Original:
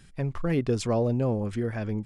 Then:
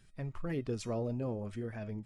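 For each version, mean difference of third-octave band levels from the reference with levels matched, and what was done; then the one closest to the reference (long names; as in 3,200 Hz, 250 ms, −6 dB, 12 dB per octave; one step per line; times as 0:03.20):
1.5 dB: spectral magnitudes quantised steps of 15 dB
tuned comb filter 630 Hz, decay 0.3 s, mix 70%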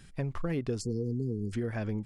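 4.5 dB: time-frequency box erased 0:00.81–0:01.53, 490–4,200 Hz
downward compressor 4 to 1, threshold −29 dBFS, peak gain reduction 7.5 dB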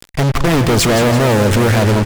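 13.0 dB: fuzz pedal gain 49 dB, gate −46 dBFS
repeating echo 167 ms, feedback 55%, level −9.5 dB
level +1.5 dB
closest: first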